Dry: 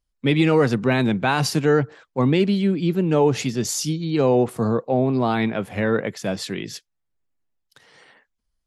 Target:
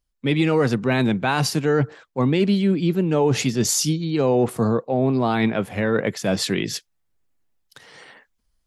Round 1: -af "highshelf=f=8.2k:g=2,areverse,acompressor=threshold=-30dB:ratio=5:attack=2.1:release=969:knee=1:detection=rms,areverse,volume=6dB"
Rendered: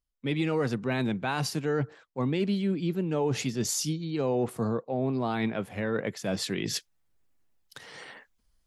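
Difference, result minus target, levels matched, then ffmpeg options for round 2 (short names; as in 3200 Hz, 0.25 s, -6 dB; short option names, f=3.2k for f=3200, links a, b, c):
compressor: peak gain reduction +9 dB
-af "highshelf=f=8.2k:g=2,areverse,acompressor=threshold=-19dB:ratio=5:attack=2.1:release=969:knee=1:detection=rms,areverse,volume=6dB"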